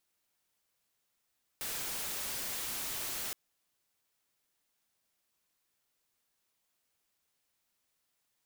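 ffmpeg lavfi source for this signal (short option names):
-f lavfi -i "anoisesrc=c=white:a=0.0218:d=1.72:r=44100:seed=1"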